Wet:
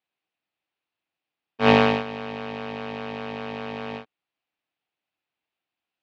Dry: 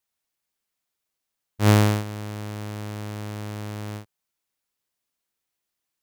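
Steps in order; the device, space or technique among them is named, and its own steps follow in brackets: ring modulator pedal into a guitar cabinet (polarity switched at an audio rate 340 Hz; cabinet simulation 92–3900 Hz, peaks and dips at 310 Hz +5 dB, 760 Hz +6 dB, 2.6 kHz +6 dB); trim -1 dB

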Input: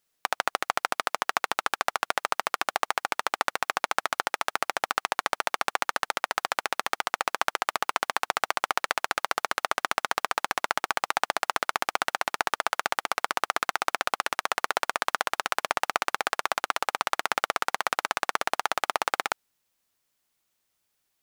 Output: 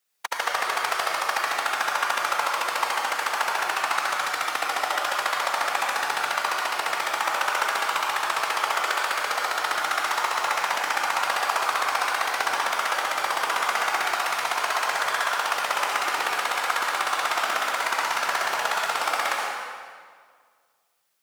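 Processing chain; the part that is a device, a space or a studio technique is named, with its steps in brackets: peaking EQ 270 Hz -6 dB 2.2 oct; whispering ghost (whisper effect; high-pass 230 Hz 6 dB/octave; reverberation RT60 1.9 s, pre-delay 67 ms, DRR -3 dB)

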